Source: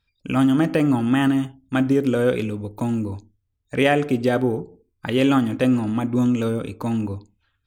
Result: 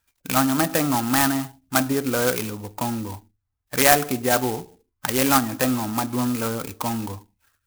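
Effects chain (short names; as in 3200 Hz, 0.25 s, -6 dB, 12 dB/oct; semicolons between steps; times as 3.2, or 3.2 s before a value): band shelf 1500 Hz +12 dB 2.6 oct; loudest bins only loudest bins 64; clock jitter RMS 0.091 ms; gain -5 dB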